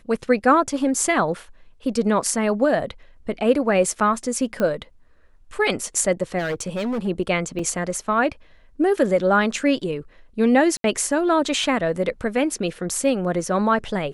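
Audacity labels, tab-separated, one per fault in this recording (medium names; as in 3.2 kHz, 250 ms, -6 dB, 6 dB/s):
4.600000	4.600000	pop -12 dBFS
6.380000	7.080000	clipped -21.5 dBFS
7.590000	7.590000	dropout 3.8 ms
10.770000	10.840000	dropout 72 ms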